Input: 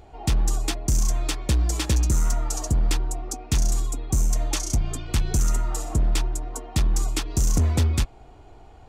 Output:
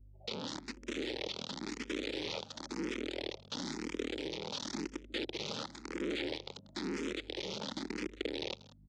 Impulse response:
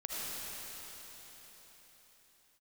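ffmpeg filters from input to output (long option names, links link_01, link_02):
-filter_complex "[0:a]acontrast=49,afreqshift=-79,asplit=2[link_01][link_02];[1:a]atrim=start_sample=2205[link_03];[link_02][link_03]afir=irnorm=-1:irlink=0,volume=-11dB[link_04];[link_01][link_04]amix=inputs=2:normalize=0,aeval=exprs='(mod(3.35*val(0)+1,2)-1)/3.35':channel_layout=same,anlmdn=6310,highpass=frequency=290:width=0.5412,highpass=frequency=290:width=1.3066,equalizer=frequency=670:width_type=q:width=4:gain=-10,equalizer=frequency=1100:width_type=q:width=4:gain=-7,equalizer=frequency=1600:width_type=q:width=4:gain=-6,equalizer=frequency=2800:width_type=q:width=4:gain=-6,lowpass=frequency=3600:width=0.5412,lowpass=frequency=3600:width=1.3066,acompressor=threshold=-43dB:ratio=1.5,aecho=1:1:188:0.112,aeval=exprs='val(0)+0.00178*(sin(2*PI*50*n/s)+sin(2*PI*2*50*n/s)/2+sin(2*PI*3*50*n/s)/3+sin(2*PI*4*50*n/s)/4+sin(2*PI*5*50*n/s)/5)':channel_layout=same,equalizer=frequency=1100:width=0.49:gain=-11.5,bandreject=frequency=730:width=12,asplit=2[link_05][link_06];[link_06]afreqshift=0.97[link_07];[link_05][link_07]amix=inputs=2:normalize=1,volume=2dB"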